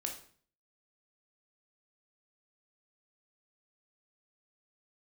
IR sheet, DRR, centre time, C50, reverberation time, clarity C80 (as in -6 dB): 2.0 dB, 20 ms, 7.0 dB, 0.50 s, 12.0 dB